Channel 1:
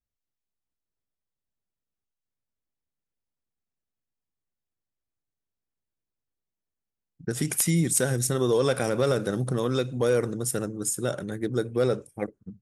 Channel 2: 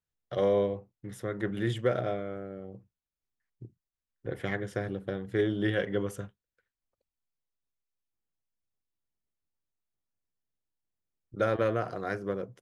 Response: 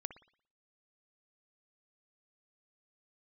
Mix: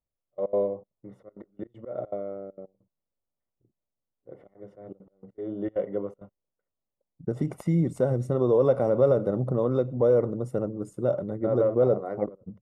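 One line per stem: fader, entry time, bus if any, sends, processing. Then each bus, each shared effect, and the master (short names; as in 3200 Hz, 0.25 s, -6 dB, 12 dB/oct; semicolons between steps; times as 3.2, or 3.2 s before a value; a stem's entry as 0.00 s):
0.0 dB, 0.00 s, no send, dry
-1.0 dB, 0.00 s, no send, HPF 170 Hz; auto swell 0.198 s; step gate "x.x..x.xxxx.xxxx" 198 bpm -24 dB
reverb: off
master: polynomial smoothing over 65 samples; bell 580 Hz +7.5 dB 0.35 oct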